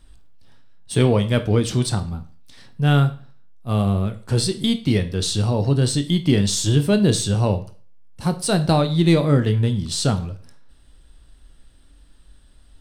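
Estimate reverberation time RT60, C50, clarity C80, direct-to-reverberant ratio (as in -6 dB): 0.40 s, 15.0 dB, 19.0 dB, 8.5 dB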